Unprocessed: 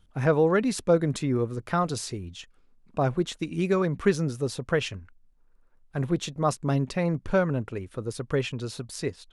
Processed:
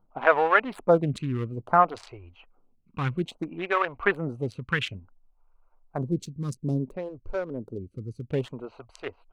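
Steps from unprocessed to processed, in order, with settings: Wiener smoothing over 25 samples; band shelf 1500 Hz +11 dB 2.7 oct, from 6.01 s -8 dB, from 8.28 s +9.5 dB; photocell phaser 0.59 Hz

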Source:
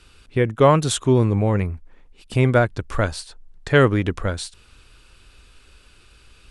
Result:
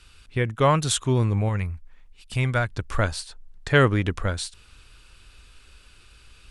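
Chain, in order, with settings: bell 370 Hz -8 dB 2.4 oct, from 1.49 s -14 dB, from 2.68 s -4.5 dB

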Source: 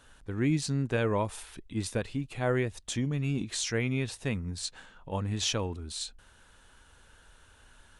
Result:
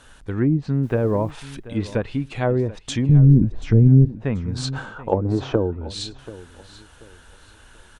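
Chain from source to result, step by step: 3.09–4.05 tilt -4 dB/oct; 4.55–5.71 spectral gain 300–1600 Hz +11 dB; treble ducked by the level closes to 330 Hz, closed at -21.5 dBFS; 0.82–1.3 added noise pink -66 dBFS; on a send: feedback echo 0.734 s, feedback 29%, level -17.5 dB; on the sum: gain +8.5 dB

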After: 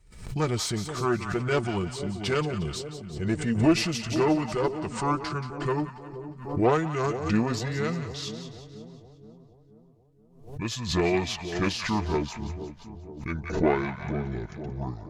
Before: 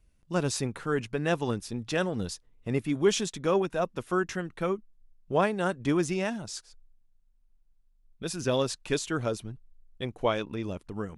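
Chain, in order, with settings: speed glide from 86% -> 62%; added harmonics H 2 -10 dB, 6 -26 dB, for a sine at -11 dBFS; notch comb 270 Hz; on a send: split-band echo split 770 Hz, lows 0.477 s, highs 0.178 s, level -11 dB; on the sum: backwards sustainer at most 89 dB/s; gain +3 dB

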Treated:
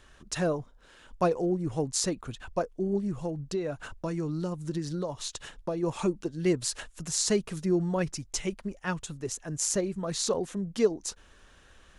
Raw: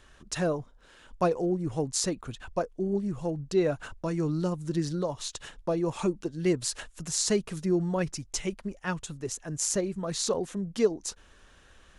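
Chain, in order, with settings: 3.2–5.83 compressor 6:1, threshold -28 dBFS, peak gain reduction 8.5 dB

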